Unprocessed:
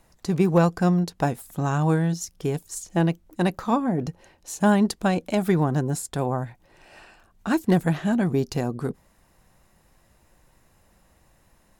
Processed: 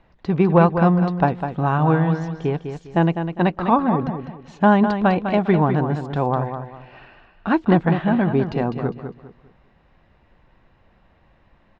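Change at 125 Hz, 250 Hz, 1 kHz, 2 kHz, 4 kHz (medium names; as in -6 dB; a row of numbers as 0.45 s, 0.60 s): +4.0 dB, +4.0 dB, +7.5 dB, +5.0 dB, -0.5 dB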